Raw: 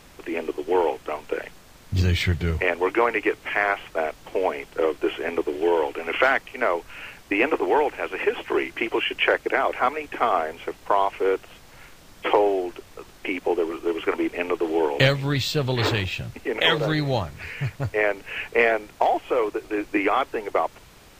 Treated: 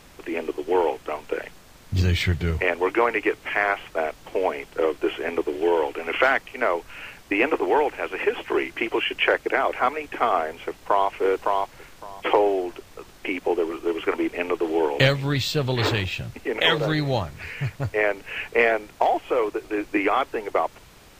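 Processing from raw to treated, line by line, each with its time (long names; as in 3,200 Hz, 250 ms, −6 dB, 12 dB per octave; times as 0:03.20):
0:10.66–0:11.10: delay throw 560 ms, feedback 15%, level −2.5 dB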